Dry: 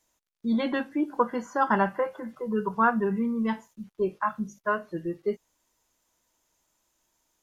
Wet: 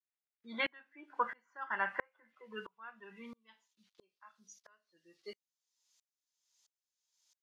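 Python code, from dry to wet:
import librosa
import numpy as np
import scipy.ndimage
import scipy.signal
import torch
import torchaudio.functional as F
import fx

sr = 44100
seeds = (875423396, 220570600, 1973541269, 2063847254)

y = fx.filter_sweep_bandpass(x, sr, from_hz=2000.0, to_hz=4700.0, start_s=2.01, end_s=4.32, q=2.0)
y = fx.tremolo_decay(y, sr, direction='swelling', hz=1.5, depth_db=35)
y = y * librosa.db_to_amplitude(9.0)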